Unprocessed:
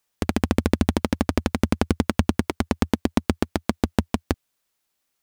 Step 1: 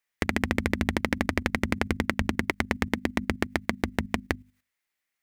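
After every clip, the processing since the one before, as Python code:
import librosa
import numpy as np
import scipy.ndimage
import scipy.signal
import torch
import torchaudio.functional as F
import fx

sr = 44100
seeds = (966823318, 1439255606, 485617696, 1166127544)

y = fx.peak_eq(x, sr, hz=2000.0, db=13.5, octaves=0.69)
y = fx.hum_notches(y, sr, base_hz=50, count=5)
y = fx.level_steps(y, sr, step_db=12)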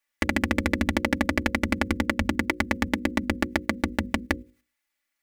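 y = fx.hum_notches(x, sr, base_hz=60, count=9)
y = y + 0.85 * np.pad(y, (int(3.5 * sr / 1000.0), 0))[:len(y)]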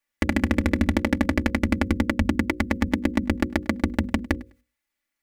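y = fx.low_shelf(x, sr, hz=450.0, db=8.0)
y = fx.echo_feedback(y, sr, ms=102, feedback_pct=21, wet_db=-23)
y = F.gain(torch.from_numpy(y), -2.5).numpy()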